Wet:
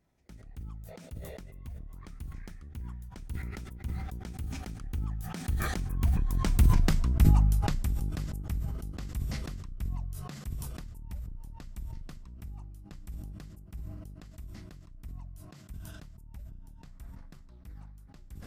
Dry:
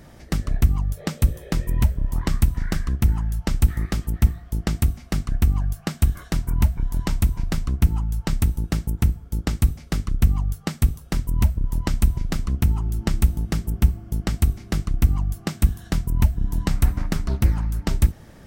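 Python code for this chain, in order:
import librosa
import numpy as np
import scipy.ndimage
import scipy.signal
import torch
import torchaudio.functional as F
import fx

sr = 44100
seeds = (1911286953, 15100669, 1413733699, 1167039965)

y = fx.doppler_pass(x, sr, speed_mps=31, closest_m=12.0, pass_at_s=6.8)
y = fx.sustainer(y, sr, db_per_s=23.0)
y = y * 10.0 ** (-3.0 / 20.0)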